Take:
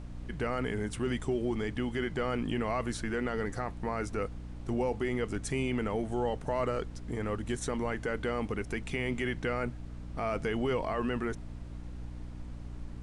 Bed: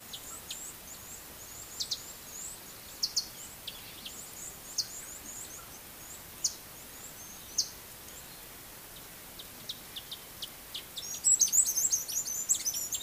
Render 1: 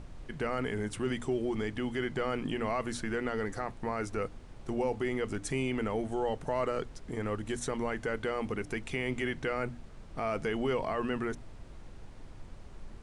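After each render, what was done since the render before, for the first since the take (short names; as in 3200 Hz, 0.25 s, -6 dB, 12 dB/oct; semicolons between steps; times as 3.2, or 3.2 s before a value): notches 60/120/180/240/300 Hz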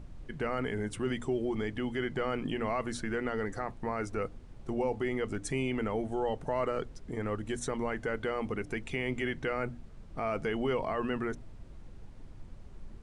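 denoiser 6 dB, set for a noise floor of -49 dBFS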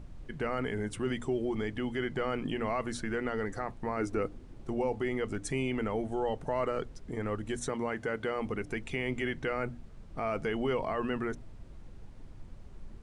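3.97–4.64 bell 310 Hz +7.5 dB; 7.69–8.38 HPF 82 Hz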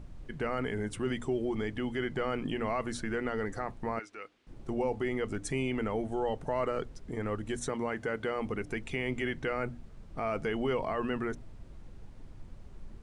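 3.99–4.47 band-pass 2900 Hz, Q 1.1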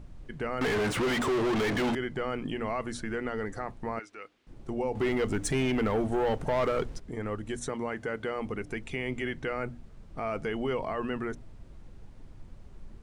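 0.61–1.95 overdrive pedal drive 39 dB, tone 2600 Hz, clips at -21 dBFS; 4.95–7 sample leveller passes 2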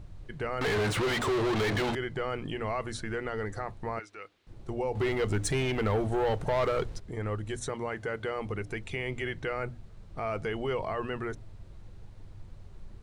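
thirty-one-band EQ 100 Hz +8 dB, 250 Hz -8 dB, 4000 Hz +4 dB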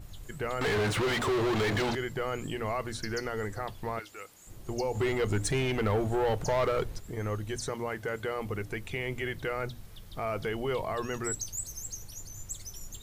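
add bed -12 dB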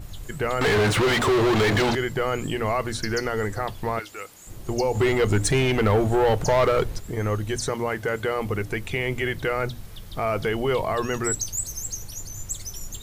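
gain +8 dB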